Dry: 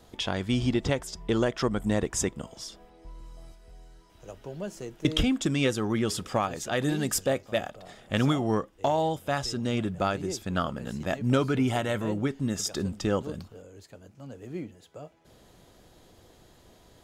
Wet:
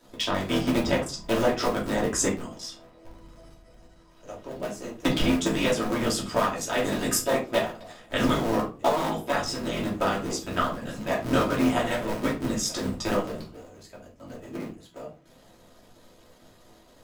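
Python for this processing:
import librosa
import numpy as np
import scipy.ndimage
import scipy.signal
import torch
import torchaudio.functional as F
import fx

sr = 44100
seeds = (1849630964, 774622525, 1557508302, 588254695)

y = fx.cycle_switch(x, sr, every=3, mode='muted')
y = fx.low_shelf(y, sr, hz=180.0, db=-9.5)
y = fx.hpss(y, sr, part='percussive', gain_db=7)
y = fx.high_shelf(y, sr, hz=9600.0, db=-4.5, at=(2.6, 4.49))
y = fx.room_shoebox(y, sr, seeds[0], volume_m3=170.0, walls='furnished', distance_m=2.8)
y = y * 10.0 ** (-6.5 / 20.0)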